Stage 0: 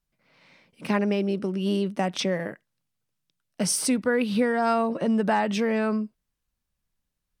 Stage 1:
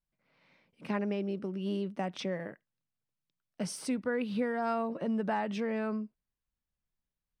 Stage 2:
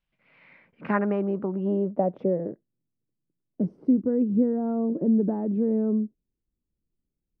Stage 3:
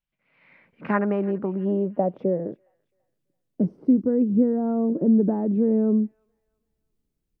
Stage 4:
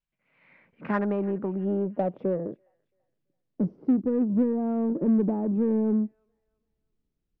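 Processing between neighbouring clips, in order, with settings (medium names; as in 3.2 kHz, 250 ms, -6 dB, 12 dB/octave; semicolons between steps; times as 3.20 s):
treble shelf 5.4 kHz -11.5 dB; trim -8.5 dB
low-pass sweep 2.9 kHz -> 340 Hz, 0.14–2.65 s; trim +7 dB
level rider gain up to 12.5 dB; feedback echo behind a high-pass 335 ms, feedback 33%, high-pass 2.3 kHz, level -15 dB; trim -7.5 dB
in parallel at -5 dB: saturation -24 dBFS, distortion -8 dB; on the sum: distance through air 120 m; trim -5.5 dB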